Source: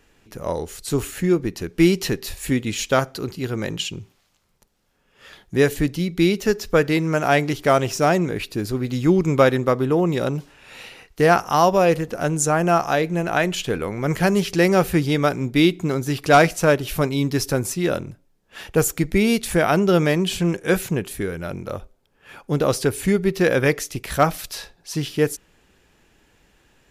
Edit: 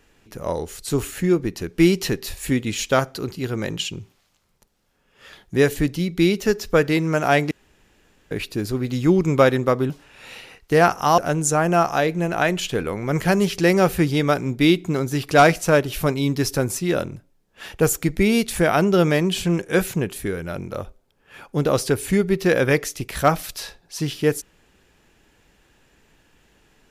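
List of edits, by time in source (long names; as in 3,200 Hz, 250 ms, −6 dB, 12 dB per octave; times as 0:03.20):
0:07.51–0:08.31: fill with room tone
0:09.90–0:10.38: remove
0:11.66–0:12.13: remove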